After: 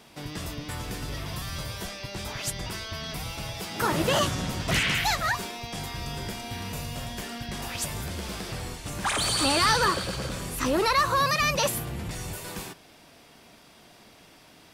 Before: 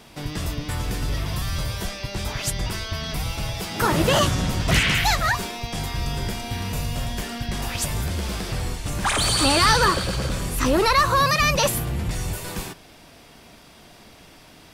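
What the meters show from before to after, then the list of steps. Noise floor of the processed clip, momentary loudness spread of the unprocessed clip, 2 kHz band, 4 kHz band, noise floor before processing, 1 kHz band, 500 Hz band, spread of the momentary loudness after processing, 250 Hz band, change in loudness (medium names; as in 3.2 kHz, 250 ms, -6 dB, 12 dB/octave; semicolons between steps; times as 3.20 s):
-54 dBFS, 12 LU, -4.5 dB, -4.5 dB, -48 dBFS, -4.5 dB, -5.0 dB, 13 LU, -5.5 dB, -5.0 dB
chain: bass shelf 75 Hz -11 dB; trim -4.5 dB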